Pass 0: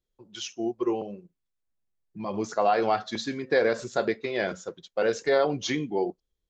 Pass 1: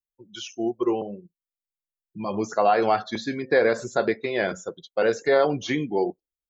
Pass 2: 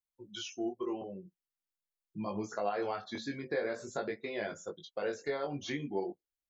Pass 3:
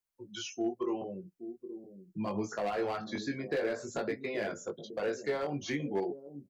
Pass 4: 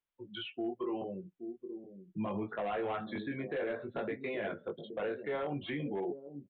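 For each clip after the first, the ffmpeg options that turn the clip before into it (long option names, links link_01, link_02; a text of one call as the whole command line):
ffmpeg -i in.wav -filter_complex "[0:a]aemphasis=mode=production:type=50fm,acrossover=split=2700[link_01][link_02];[link_02]acompressor=threshold=-42dB:ratio=4:attack=1:release=60[link_03];[link_01][link_03]amix=inputs=2:normalize=0,afftdn=noise_reduction=23:noise_floor=-48,volume=3.5dB" out.wav
ffmpeg -i in.wav -af "acompressor=threshold=-37dB:ratio=2,flanger=delay=19:depth=2.3:speed=0.45" out.wav
ffmpeg -i in.wav -filter_complex "[0:a]equalizer=frequency=3500:width_type=o:width=0.31:gain=-6,acrossover=split=130|440|2800[link_01][link_02][link_03][link_04];[link_02]aecho=1:1:824:0.447[link_05];[link_03]asoftclip=type=hard:threshold=-36dB[link_06];[link_01][link_05][link_06][link_04]amix=inputs=4:normalize=0,volume=3dB" out.wav
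ffmpeg -i in.wav -af "alimiter=level_in=5dB:limit=-24dB:level=0:latency=1:release=12,volume=-5dB,aresample=8000,aresample=44100" out.wav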